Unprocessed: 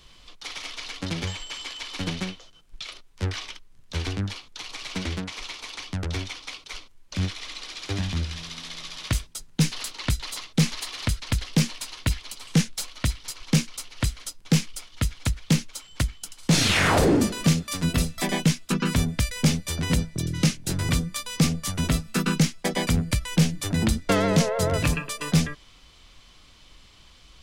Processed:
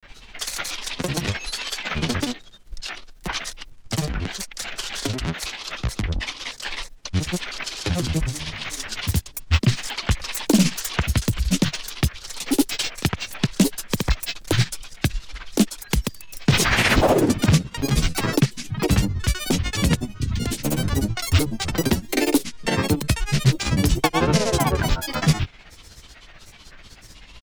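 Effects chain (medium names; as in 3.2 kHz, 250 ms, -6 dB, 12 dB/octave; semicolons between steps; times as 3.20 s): granulator 100 ms, grains 16 per s, pitch spread up and down by 12 st; in parallel at +2.5 dB: compression, threshold -32 dBFS, peak gain reduction 15 dB; on the sum: trim +2 dB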